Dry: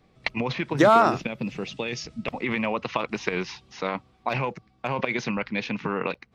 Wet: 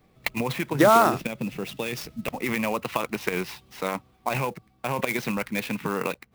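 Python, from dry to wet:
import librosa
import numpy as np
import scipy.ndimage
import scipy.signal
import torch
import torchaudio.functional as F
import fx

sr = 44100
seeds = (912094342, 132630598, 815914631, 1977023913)

y = fx.clock_jitter(x, sr, seeds[0], jitter_ms=0.025)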